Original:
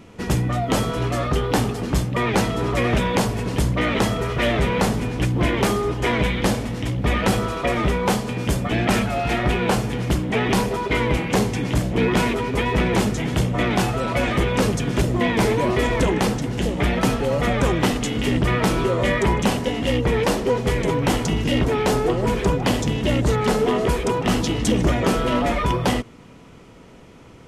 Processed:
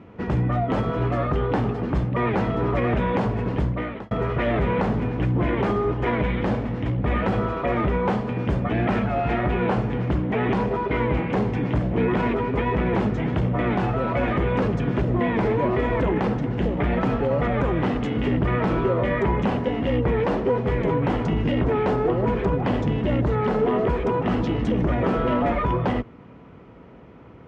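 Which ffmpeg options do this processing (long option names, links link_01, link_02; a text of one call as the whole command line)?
ffmpeg -i in.wav -filter_complex "[0:a]asplit=2[link_01][link_02];[link_01]atrim=end=4.11,asetpts=PTS-STARTPTS,afade=type=out:start_time=3.51:duration=0.6[link_03];[link_02]atrim=start=4.11,asetpts=PTS-STARTPTS,afade=type=in:duration=0.004:curve=hsin[link_04];[link_03][link_04]concat=n=2:v=0:a=1,highpass=frequency=44:width=0.5412,highpass=frequency=44:width=1.3066,alimiter=limit=-12.5dB:level=0:latency=1:release=48,lowpass=1800" out.wav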